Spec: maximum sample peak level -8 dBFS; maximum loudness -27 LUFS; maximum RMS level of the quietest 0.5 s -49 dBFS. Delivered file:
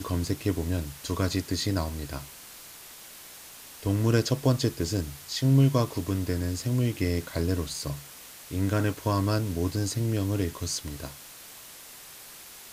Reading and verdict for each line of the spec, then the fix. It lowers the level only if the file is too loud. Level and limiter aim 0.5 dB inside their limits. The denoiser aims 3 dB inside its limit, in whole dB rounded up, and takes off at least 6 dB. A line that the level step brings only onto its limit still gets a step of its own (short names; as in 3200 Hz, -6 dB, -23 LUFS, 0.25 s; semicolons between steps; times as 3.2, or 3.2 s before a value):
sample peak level -9.0 dBFS: OK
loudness -28.0 LUFS: OK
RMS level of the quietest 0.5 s -47 dBFS: fail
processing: denoiser 6 dB, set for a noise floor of -47 dBFS